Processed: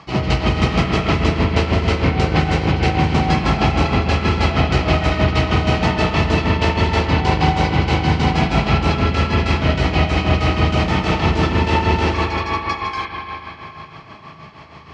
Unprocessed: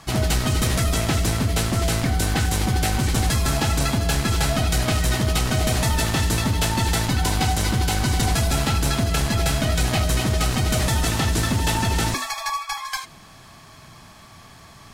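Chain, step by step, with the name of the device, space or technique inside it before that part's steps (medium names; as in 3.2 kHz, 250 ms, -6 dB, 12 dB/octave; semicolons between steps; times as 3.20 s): combo amplifier with spring reverb and tremolo (spring tank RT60 3.5 s, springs 38/51 ms, chirp 55 ms, DRR -2.5 dB; tremolo 6.3 Hz, depth 58%; cabinet simulation 82–4200 Hz, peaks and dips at 110 Hz -10 dB, 240 Hz -5 dB, 690 Hz -4 dB, 1.6 kHz -9 dB, 3.6 kHz -9 dB); trim +7.5 dB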